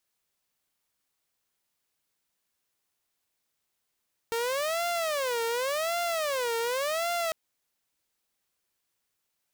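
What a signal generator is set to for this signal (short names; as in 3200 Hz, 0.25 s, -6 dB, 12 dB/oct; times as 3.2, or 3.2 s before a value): siren wail 459–694 Hz 0.89/s saw -24.5 dBFS 3.00 s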